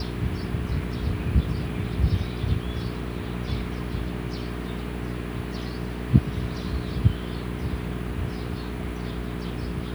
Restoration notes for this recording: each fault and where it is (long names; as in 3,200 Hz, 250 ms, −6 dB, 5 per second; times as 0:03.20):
mains hum 60 Hz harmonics 7 −32 dBFS